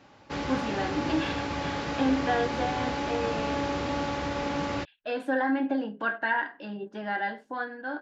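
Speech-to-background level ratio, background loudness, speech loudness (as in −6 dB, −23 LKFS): 0.5 dB, −31.5 LKFS, −31.0 LKFS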